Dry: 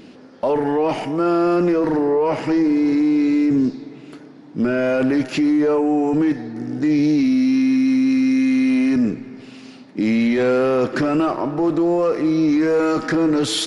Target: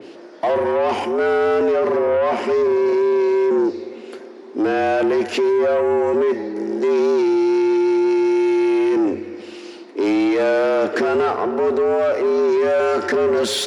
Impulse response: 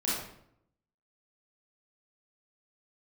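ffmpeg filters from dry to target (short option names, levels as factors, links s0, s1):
-af "aeval=exprs='0.299*(cos(1*acos(clip(val(0)/0.299,-1,1)))-cos(1*PI/2))+0.00237*(cos(2*acos(clip(val(0)/0.299,-1,1)))-cos(2*PI/2))+0.0335*(cos(5*acos(clip(val(0)/0.299,-1,1)))-cos(5*PI/2))':c=same,afreqshift=91,adynamicequalizer=threshold=0.02:dfrequency=3100:dqfactor=0.7:tfrequency=3100:tqfactor=0.7:attack=5:release=100:ratio=0.375:range=1.5:mode=cutabove:tftype=highshelf"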